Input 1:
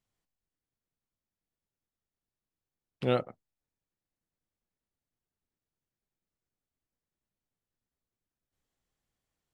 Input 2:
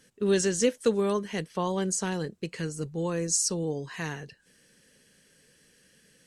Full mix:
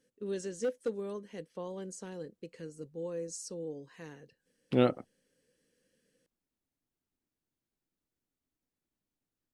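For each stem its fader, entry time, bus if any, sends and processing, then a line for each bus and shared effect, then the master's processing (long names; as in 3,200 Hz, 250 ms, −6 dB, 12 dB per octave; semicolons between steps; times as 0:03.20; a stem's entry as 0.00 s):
−1.0 dB, 1.70 s, no send, no processing
−17.5 dB, 0.00 s, no send, parametric band 510 Hz +11.5 dB 0.33 octaves; hard clipping −11 dBFS, distortion −17 dB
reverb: not used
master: parametric band 280 Hz +8.5 dB 0.83 octaves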